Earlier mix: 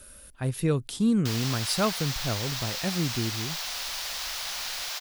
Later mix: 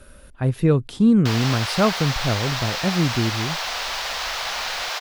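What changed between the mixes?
speech −6.0 dB
master: remove first-order pre-emphasis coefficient 0.8

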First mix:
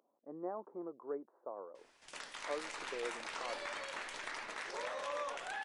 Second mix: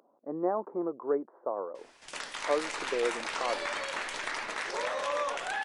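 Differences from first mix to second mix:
speech +12.0 dB
background +8.5 dB

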